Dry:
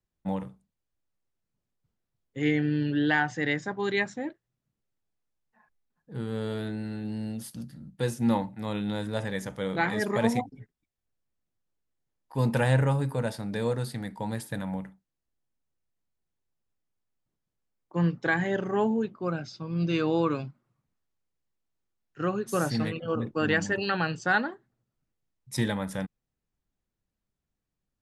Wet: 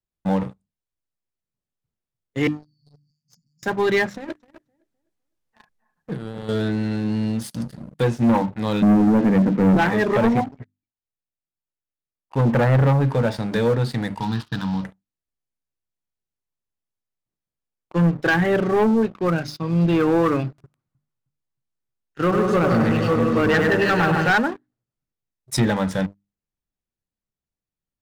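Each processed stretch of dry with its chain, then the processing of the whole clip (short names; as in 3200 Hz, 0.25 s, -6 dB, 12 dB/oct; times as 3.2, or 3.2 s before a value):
2.47–3.63 three-band isolator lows -17 dB, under 400 Hz, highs -18 dB, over 4900 Hz + compressor 12:1, threshold -34 dBFS + brick-wall FIR band-stop 250–4400 Hz
4.14–6.49 negative-ratio compressor -42 dBFS + tape echo 0.256 s, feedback 36%, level -9.5 dB, low-pass 2600 Hz
8.82–9.77 Chebyshev band-pass 170–2700 Hz, order 4 + resonant low shelf 440 Hz +12.5 dB, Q 1.5
10.56–12.81 gate -49 dBFS, range -6 dB + tone controls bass -1 dB, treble -14 dB + Doppler distortion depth 0.19 ms
14.2–14.84 CVSD 32 kbps + HPF 72 Hz + fixed phaser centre 2100 Hz, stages 6
20.48–24.31 echo with dull and thin repeats by turns 0.156 s, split 1600 Hz, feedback 58%, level -5.5 dB + lo-fi delay 0.1 s, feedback 35%, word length 8-bit, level -5.5 dB
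whole clip: notches 50/100/150/200/250/300 Hz; treble ducked by the level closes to 1800 Hz, closed at -22 dBFS; sample leveller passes 3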